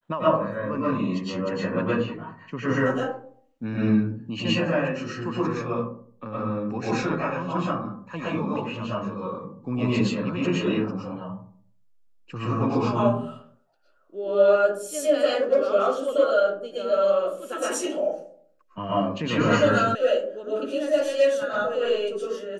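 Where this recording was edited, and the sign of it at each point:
0:19.95: cut off before it has died away

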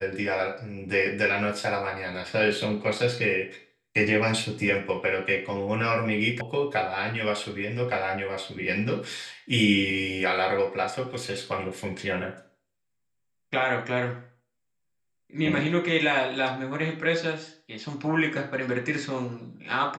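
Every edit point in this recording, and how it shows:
0:06.41: cut off before it has died away

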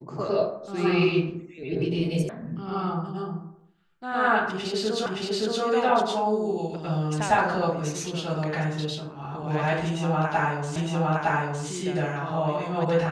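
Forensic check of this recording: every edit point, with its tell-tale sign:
0:02.29: cut off before it has died away
0:05.06: the same again, the last 0.57 s
0:10.76: the same again, the last 0.91 s

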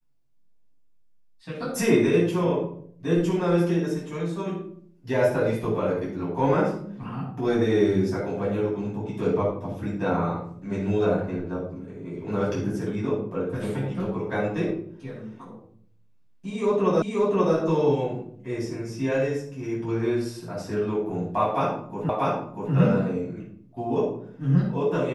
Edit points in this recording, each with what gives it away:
0:17.02: the same again, the last 0.53 s
0:22.09: the same again, the last 0.64 s

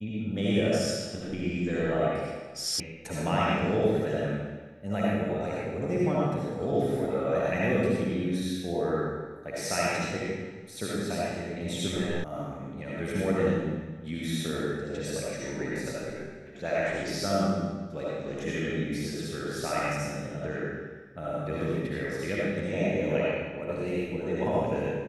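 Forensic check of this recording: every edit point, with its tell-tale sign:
0:02.80: cut off before it has died away
0:12.24: cut off before it has died away

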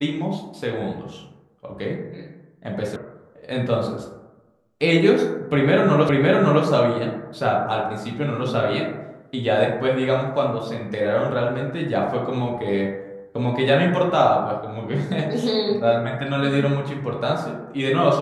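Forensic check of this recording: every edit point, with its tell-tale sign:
0:02.96: cut off before it has died away
0:06.09: the same again, the last 0.56 s

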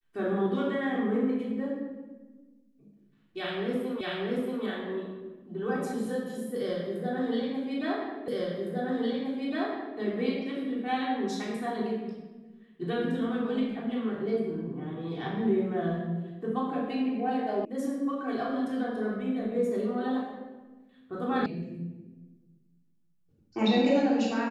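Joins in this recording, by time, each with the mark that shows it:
0:04.01: the same again, the last 0.63 s
0:08.28: the same again, the last 1.71 s
0:17.65: cut off before it has died away
0:21.46: cut off before it has died away

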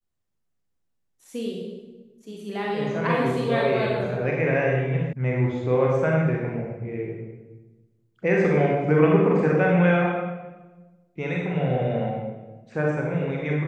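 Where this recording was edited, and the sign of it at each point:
0:05.13: cut off before it has died away

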